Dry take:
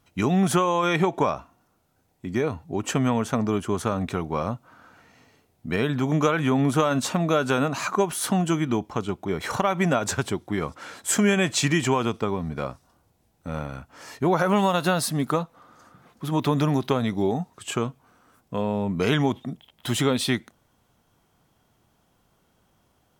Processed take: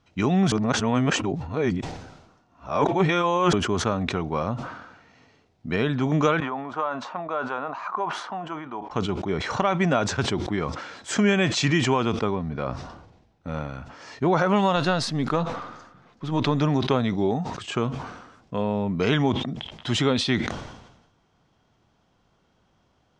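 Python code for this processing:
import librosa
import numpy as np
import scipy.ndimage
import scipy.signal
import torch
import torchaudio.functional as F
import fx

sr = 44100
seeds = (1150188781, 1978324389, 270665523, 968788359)

y = fx.bandpass_q(x, sr, hz=970.0, q=1.9, at=(6.4, 8.91))
y = fx.high_shelf(y, sr, hz=5700.0, db=-10.5, at=(12.35, 13.48))
y = fx.halfwave_gain(y, sr, db=-3.0, at=(14.76, 16.61))
y = fx.edit(y, sr, fx.reverse_span(start_s=0.52, length_s=3.01), tone=tone)
y = scipy.signal.sosfilt(scipy.signal.butter(4, 6000.0, 'lowpass', fs=sr, output='sos'), y)
y = fx.sustainer(y, sr, db_per_s=56.0)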